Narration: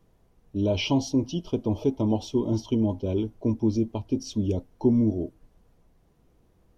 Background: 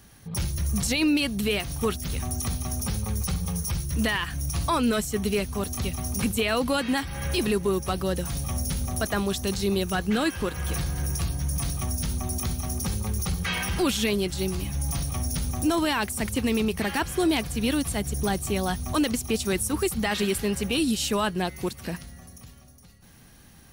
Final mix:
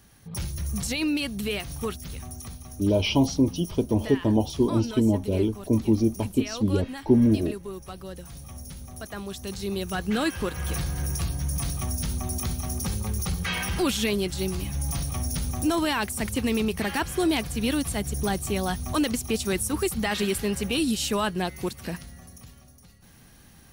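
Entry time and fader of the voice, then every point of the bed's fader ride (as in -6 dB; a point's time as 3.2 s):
2.25 s, +2.5 dB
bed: 1.76 s -3.5 dB
2.63 s -12 dB
8.93 s -12 dB
10.22 s -0.5 dB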